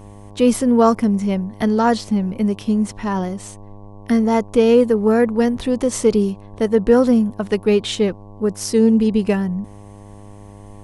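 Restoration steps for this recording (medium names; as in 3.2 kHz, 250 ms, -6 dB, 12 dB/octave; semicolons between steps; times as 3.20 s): de-hum 101.7 Hz, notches 11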